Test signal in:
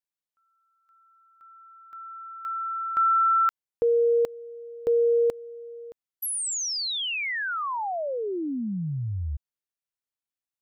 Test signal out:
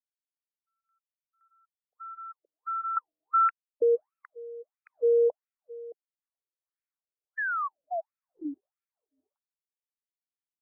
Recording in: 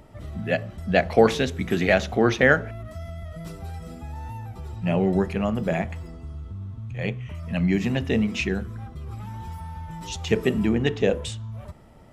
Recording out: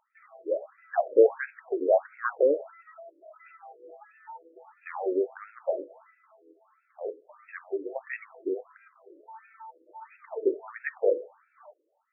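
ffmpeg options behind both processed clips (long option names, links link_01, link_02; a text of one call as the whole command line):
ffmpeg -i in.wav -af "agate=range=-15dB:threshold=-44dB:ratio=16:release=65:detection=peak,afftfilt=real='re*between(b*sr/1024,400*pow(1900/400,0.5+0.5*sin(2*PI*1.5*pts/sr))/1.41,400*pow(1900/400,0.5+0.5*sin(2*PI*1.5*pts/sr))*1.41)':imag='im*between(b*sr/1024,400*pow(1900/400,0.5+0.5*sin(2*PI*1.5*pts/sr))/1.41,400*pow(1900/400,0.5+0.5*sin(2*PI*1.5*pts/sr))*1.41)':win_size=1024:overlap=0.75" out.wav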